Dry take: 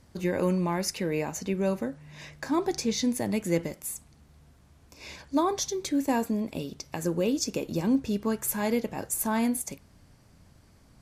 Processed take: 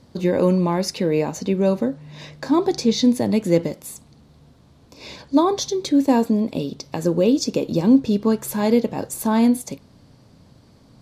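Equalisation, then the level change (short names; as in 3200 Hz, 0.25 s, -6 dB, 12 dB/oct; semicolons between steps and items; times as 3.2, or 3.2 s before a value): graphic EQ 125/250/500/1000/4000 Hz +9/+9/+9/+6/+11 dB; -2.0 dB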